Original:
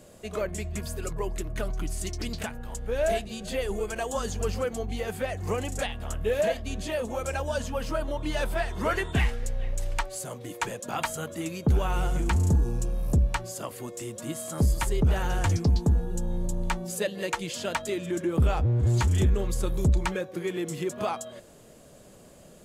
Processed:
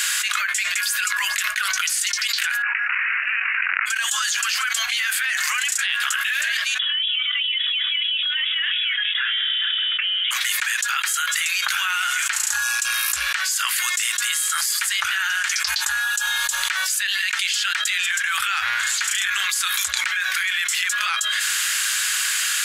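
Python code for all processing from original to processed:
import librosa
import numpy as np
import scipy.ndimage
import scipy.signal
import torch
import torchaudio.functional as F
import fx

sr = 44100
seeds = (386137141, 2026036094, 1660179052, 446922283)

y = fx.chain(x, sr, fx.overflow_wrap(gain_db=24.0),
    fx.resample_bad(factor=8, down='none', up='filtered'),
    fx.doubler(ms=21.0, db=-11.5), at=(2.62, 3.86))
y = fx.chain(y, sr, fx.highpass(hz=160.0, slope=24),
    fx.freq_invert(carrier_hz=3600), at=(6.79, 10.31))
y = scipy.signal.sosfilt(scipy.signal.ellip(4, 1.0, 70, 1500.0, 'highpass', fs=sr, output='sos'), y)
y = fx.high_shelf(y, sr, hz=4000.0, db=-7.5)
y = fx.env_flatten(y, sr, amount_pct=100)
y = F.gain(torch.from_numpy(y), 4.0).numpy()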